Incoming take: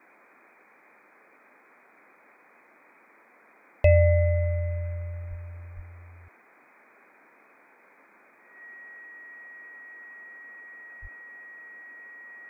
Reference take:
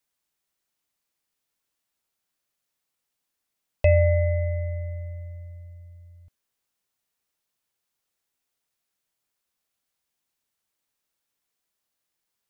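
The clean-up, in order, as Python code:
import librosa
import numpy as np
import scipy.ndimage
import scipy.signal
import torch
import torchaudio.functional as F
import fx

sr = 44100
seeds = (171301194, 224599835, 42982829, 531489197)

y = fx.notch(x, sr, hz=1900.0, q=30.0)
y = fx.highpass(y, sr, hz=140.0, slope=24, at=(5.29, 5.41), fade=0.02)
y = fx.highpass(y, sr, hz=140.0, slope=24, at=(5.75, 5.87), fade=0.02)
y = fx.highpass(y, sr, hz=140.0, slope=24, at=(11.01, 11.13), fade=0.02)
y = fx.noise_reduce(y, sr, print_start_s=0.62, print_end_s=1.12, reduce_db=24.0)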